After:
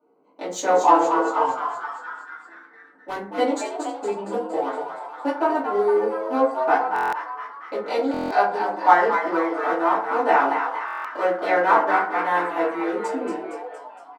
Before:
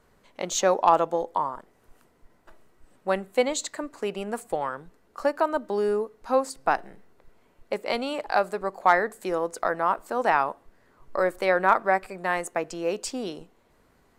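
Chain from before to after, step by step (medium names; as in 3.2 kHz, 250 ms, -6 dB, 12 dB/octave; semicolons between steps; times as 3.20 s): local Wiener filter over 25 samples; elliptic high-pass 190 Hz, stop band 40 dB; doubling 15 ms -3 dB; 1.44–3.25 s: overload inside the chain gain 23.5 dB; frequency-shifting echo 232 ms, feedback 61%, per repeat +120 Hz, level -7 dB; FDN reverb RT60 0.49 s, low-frequency decay 1.05×, high-frequency decay 0.45×, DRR -10 dB; buffer glitch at 6.94/8.12/10.86 s, samples 1024, times 7; trim -8.5 dB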